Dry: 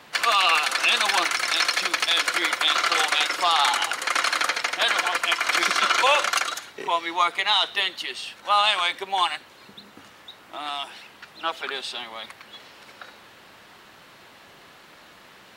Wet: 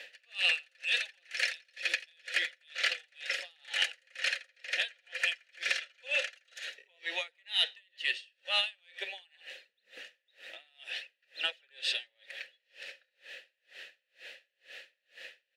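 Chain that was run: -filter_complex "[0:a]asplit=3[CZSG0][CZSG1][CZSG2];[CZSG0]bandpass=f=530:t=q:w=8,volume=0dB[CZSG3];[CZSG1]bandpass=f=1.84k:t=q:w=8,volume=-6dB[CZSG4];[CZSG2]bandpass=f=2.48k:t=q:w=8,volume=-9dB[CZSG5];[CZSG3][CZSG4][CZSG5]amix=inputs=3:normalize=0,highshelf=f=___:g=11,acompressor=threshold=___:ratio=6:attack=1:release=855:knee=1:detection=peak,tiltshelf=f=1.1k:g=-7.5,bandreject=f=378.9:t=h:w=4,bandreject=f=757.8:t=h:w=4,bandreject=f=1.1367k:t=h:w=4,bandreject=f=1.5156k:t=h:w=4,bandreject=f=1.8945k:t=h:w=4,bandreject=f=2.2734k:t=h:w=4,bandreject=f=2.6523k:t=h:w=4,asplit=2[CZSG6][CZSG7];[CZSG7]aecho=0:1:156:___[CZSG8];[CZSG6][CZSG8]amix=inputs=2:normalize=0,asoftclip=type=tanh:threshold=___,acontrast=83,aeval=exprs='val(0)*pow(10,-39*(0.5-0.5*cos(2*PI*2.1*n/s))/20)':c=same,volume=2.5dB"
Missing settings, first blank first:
2.9k, -32dB, 0.133, -23.5dB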